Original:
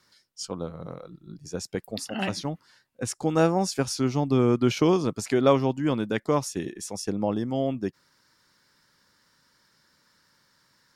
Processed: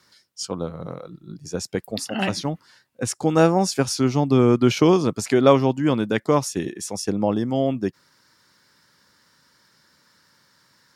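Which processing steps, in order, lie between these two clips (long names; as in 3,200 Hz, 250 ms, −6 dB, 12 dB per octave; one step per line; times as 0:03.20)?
high-pass filter 60 Hz
level +5 dB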